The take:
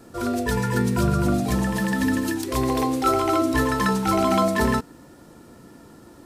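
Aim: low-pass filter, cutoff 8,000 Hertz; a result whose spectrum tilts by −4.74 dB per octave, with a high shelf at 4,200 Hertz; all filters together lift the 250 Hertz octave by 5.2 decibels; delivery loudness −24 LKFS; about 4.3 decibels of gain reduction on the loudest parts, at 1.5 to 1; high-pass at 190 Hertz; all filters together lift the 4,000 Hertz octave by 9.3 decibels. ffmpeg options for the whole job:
ffmpeg -i in.wav -af "highpass=190,lowpass=8000,equalizer=frequency=250:width_type=o:gain=8,equalizer=frequency=4000:width_type=o:gain=8.5,highshelf=frequency=4200:gain=5.5,acompressor=threshold=-25dB:ratio=1.5,volume=-1.5dB" out.wav

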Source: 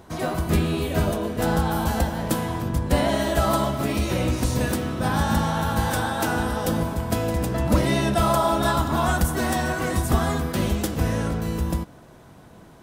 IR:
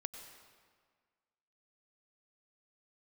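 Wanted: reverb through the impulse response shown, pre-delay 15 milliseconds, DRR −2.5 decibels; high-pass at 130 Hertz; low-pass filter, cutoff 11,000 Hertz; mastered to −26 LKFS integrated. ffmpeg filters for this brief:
-filter_complex "[0:a]highpass=130,lowpass=11000,asplit=2[link_01][link_02];[1:a]atrim=start_sample=2205,adelay=15[link_03];[link_02][link_03]afir=irnorm=-1:irlink=0,volume=4.5dB[link_04];[link_01][link_04]amix=inputs=2:normalize=0,volume=-6dB"

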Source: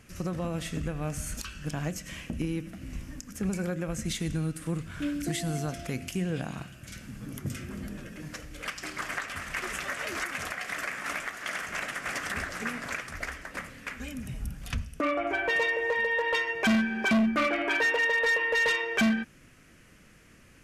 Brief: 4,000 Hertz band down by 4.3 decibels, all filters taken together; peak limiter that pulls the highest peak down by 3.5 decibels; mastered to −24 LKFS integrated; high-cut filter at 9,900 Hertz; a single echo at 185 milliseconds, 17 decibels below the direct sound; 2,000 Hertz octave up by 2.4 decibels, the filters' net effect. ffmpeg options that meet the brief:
ffmpeg -i in.wav -af "lowpass=9900,equalizer=frequency=2000:width_type=o:gain=4.5,equalizer=frequency=4000:width_type=o:gain=-8.5,alimiter=limit=-20dB:level=0:latency=1,aecho=1:1:185:0.141,volume=6dB" out.wav

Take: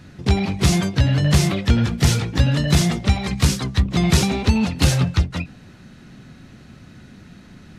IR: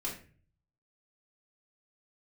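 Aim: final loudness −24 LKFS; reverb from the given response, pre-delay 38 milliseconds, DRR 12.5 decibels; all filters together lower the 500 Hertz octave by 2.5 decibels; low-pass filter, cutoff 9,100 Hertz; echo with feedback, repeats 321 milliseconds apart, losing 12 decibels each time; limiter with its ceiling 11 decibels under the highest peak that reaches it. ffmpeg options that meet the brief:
-filter_complex "[0:a]lowpass=9100,equalizer=frequency=500:width_type=o:gain=-3.5,alimiter=limit=-14.5dB:level=0:latency=1,aecho=1:1:321|642|963:0.251|0.0628|0.0157,asplit=2[link_01][link_02];[1:a]atrim=start_sample=2205,adelay=38[link_03];[link_02][link_03]afir=irnorm=-1:irlink=0,volume=-14.5dB[link_04];[link_01][link_04]amix=inputs=2:normalize=0,volume=-1dB"

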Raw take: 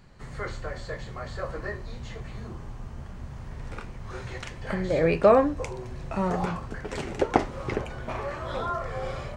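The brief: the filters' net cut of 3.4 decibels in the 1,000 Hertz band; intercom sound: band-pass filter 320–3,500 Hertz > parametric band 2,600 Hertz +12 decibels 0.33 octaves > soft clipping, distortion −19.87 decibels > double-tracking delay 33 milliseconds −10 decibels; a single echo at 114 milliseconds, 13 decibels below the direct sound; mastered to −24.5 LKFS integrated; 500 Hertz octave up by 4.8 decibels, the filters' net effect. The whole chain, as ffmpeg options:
ffmpeg -i in.wav -filter_complex "[0:a]highpass=320,lowpass=3500,equalizer=frequency=500:width_type=o:gain=9,equalizer=frequency=1000:width_type=o:gain=-9,equalizer=frequency=2600:width_type=o:width=0.33:gain=12,aecho=1:1:114:0.224,asoftclip=threshold=-7dB,asplit=2[link_01][link_02];[link_02]adelay=33,volume=-10dB[link_03];[link_01][link_03]amix=inputs=2:normalize=0,volume=1.5dB" out.wav

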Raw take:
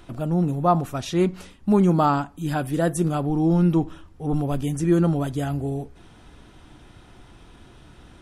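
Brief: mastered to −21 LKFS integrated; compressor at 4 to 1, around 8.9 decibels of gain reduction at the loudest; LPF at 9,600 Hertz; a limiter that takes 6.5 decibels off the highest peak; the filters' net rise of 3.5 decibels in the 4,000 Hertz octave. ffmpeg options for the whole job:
ffmpeg -i in.wav -af "lowpass=9600,equalizer=frequency=4000:width_type=o:gain=4.5,acompressor=threshold=-25dB:ratio=4,volume=10.5dB,alimiter=limit=-12.5dB:level=0:latency=1" out.wav

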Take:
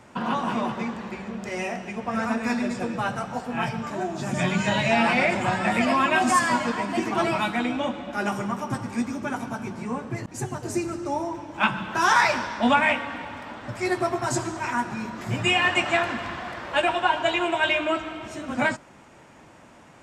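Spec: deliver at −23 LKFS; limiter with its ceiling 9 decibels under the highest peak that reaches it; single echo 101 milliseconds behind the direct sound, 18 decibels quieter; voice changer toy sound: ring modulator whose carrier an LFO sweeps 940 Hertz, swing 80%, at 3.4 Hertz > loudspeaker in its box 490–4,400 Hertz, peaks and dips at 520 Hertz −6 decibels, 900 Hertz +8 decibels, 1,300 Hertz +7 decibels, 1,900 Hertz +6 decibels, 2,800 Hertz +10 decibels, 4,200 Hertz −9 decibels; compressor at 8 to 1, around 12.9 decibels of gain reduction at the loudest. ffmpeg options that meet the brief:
ffmpeg -i in.wav -af "acompressor=threshold=-29dB:ratio=8,alimiter=level_in=2.5dB:limit=-24dB:level=0:latency=1,volume=-2.5dB,aecho=1:1:101:0.126,aeval=exprs='val(0)*sin(2*PI*940*n/s+940*0.8/3.4*sin(2*PI*3.4*n/s))':channel_layout=same,highpass=490,equalizer=frequency=520:width_type=q:width=4:gain=-6,equalizer=frequency=900:width_type=q:width=4:gain=8,equalizer=frequency=1300:width_type=q:width=4:gain=7,equalizer=frequency=1900:width_type=q:width=4:gain=6,equalizer=frequency=2800:width_type=q:width=4:gain=10,equalizer=frequency=4200:width_type=q:width=4:gain=-9,lowpass=frequency=4400:width=0.5412,lowpass=frequency=4400:width=1.3066,volume=9.5dB" out.wav

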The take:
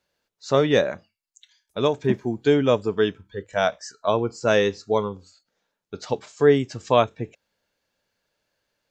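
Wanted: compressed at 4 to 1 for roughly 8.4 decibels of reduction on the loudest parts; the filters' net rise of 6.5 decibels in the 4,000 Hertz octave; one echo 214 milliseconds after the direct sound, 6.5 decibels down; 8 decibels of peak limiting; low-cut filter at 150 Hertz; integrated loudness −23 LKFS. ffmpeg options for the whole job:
ffmpeg -i in.wav -af "highpass=150,equalizer=frequency=4000:width_type=o:gain=8,acompressor=threshold=-22dB:ratio=4,alimiter=limit=-18dB:level=0:latency=1,aecho=1:1:214:0.473,volume=7.5dB" out.wav

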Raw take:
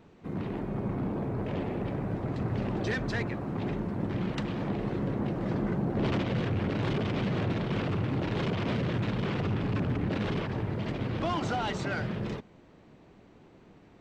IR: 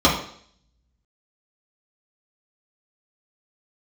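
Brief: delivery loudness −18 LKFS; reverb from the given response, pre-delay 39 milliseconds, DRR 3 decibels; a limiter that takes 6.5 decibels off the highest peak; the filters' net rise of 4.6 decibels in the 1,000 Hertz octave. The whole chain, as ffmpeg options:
-filter_complex "[0:a]equalizer=frequency=1000:width_type=o:gain=6,alimiter=limit=-23.5dB:level=0:latency=1,asplit=2[link_01][link_02];[1:a]atrim=start_sample=2205,adelay=39[link_03];[link_02][link_03]afir=irnorm=-1:irlink=0,volume=-24.5dB[link_04];[link_01][link_04]amix=inputs=2:normalize=0,volume=11.5dB"

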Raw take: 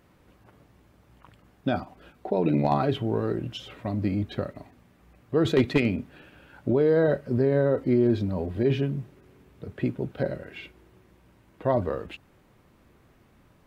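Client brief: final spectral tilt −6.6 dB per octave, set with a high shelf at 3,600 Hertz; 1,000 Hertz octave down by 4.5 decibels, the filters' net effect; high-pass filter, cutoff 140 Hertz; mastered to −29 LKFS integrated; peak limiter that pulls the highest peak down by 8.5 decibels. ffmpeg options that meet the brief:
ffmpeg -i in.wav -af "highpass=140,equalizer=frequency=1000:width_type=o:gain=-6.5,highshelf=frequency=3600:gain=-3,volume=1.5dB,alimiter=limit=-17dB:level=0:latency=1" out.wav

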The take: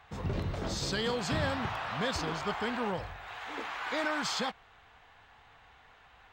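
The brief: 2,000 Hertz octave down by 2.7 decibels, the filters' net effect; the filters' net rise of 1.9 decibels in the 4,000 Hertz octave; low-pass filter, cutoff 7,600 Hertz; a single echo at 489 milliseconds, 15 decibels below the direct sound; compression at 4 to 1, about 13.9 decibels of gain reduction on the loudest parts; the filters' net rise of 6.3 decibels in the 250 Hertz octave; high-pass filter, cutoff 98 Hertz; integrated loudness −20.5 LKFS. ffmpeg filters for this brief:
ffmpeg -i in.wav -af "highpass=98,lowpass=7600,equalizer=frequency=250:width_type=o:gain=8,equalizer=frequency=2000:width_type=o:gain=-4.5,equalizer=frequency=4000:width_type=o:gain=4,acompressor=threshold=-42dB:ratio=4,aecho=1:1:489:0.178,volume=22.5dB" out.wav

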